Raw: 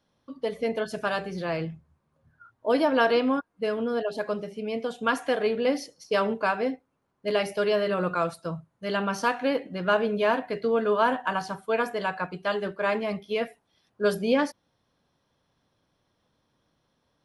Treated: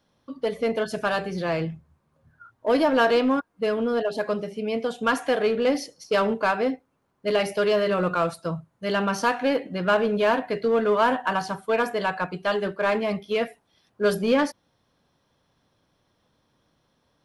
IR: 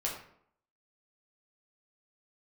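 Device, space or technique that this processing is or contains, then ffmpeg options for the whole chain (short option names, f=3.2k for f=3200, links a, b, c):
parallel distortion: -filter_complex "[0:a]asplit=2[a][b];[b]asoftclip=type=hard:threshold=-25dB,volume=-5dB[c];[a][c]amix=inputs=2:normalize=0"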